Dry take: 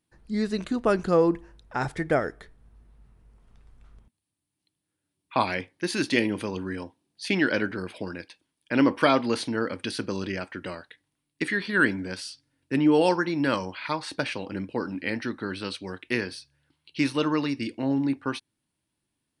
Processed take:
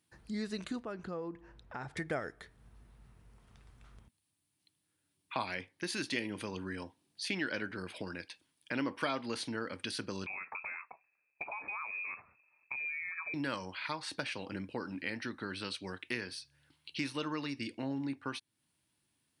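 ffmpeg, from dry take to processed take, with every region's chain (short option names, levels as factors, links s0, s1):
-filter_complex "[0:a]asettb=1/sr,asplit=3[s0][s1][s2];[s0]atrim=end=0.834[s3];[s1]atrim=start=0.83:end=1.97,asetpts=PTS-STARTPTS,afade=t=in:d=0.004:c=qsin,afade=t=out:st=1.136:d=0.004:c=qsin,aemphasis=mode=reproduction:type=75kf,acompressor=threshold=0.00355:ratio=1.5:attack=3.2:release=140:knee=1:detection=peak[s4];[s2]atrim=start=1.966[s5];[s3][s4]acrossfade=d=0.004:c1=hsin:c2=qsin[s6];[s6][s5]acrossfade=d=0.004:c1=qsin:c2=hsin,asettb=1/sr,asplit=3[s7][s8][s9];[s7]atrim=end=10.264[s10];[s8]atrim=start=10.26:end=13.34,asetpts=PTS-STARTPTS,afade=t=in:d=0.004:c=qsin,afade=t=out:st=3.076:d=0.004:c=qsin,acompressor=threshold=0.0224:ratio=6:attack=3.2:release=140:knee=1:detection=peak,lowpass=f=2300:t=q:w=0.5098,lowpass=f=2300:t=q:w=0.6013,lowpass=f=2300:t=q:w=0.9,lowpass=f=2300:t=q:w=2.563,afreqshift=-2700[s11];[s9]atrim=start=13.336[s12];[s10][s11]acrossfade=d=0.004:c1=hsin:c2=qsin[s13];[s13][s12]acrossfade=d=0.004:c1=qsin:c2=hsin,highpass=79,equalizer=f=340:w=0.37:g=-5.5,acompressor=threshold=0.00447:ratio=2,volume=1.58"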